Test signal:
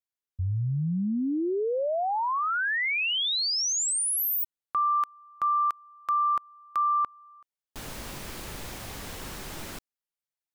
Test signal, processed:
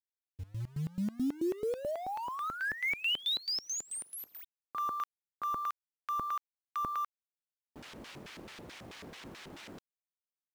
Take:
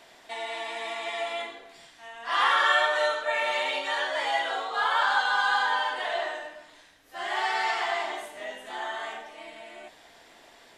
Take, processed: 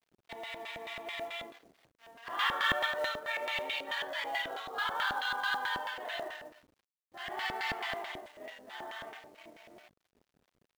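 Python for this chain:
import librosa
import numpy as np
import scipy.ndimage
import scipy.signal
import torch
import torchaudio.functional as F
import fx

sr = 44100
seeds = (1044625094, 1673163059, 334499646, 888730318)

y = fx.backlash(x, sr, play_db=-40.0)
y = fx.filter_lfo_bandpass(y, sr, shape='square', hz=4.6, low_hz=300.0, high_hz=2900.0, q=0.82)
y = fx.quant_companded(y, sr, bits=6)
y = y * librosa.db_to_amplitude(-2.5)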